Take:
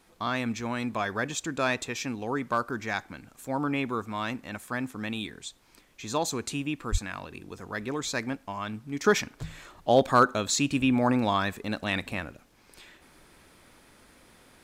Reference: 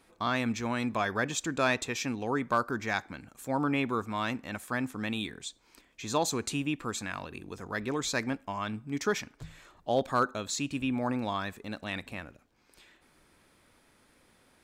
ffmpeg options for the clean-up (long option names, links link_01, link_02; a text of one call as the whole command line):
ffmpeg -i in.wav -filter_complex "[0:a]asplit=3[link_01][link_02][link_03];[link_01]afade=type=out:start_time=6.91:duration=0.02[link_04];[link_02]highpass=frequency=140:width=0.5412,highpass=frequency=140:width=1.3066,afade=type=in:start_time=6.91:duration=0.02,afade=type=out:start_time=7.03:duration=0.02[link_05];[link_03]afade=type=in:start_time=7.03:duration=0.02[link_06];[link_04][link_05][link_06]amix=inputs=3:normalize=0,agate=range=-21dB:threshold=-49dB,asetnsamples=nb_out_samples=441:pad=0,asendcmd='9.04 volume volume -7dB',volume=0dB" out.wav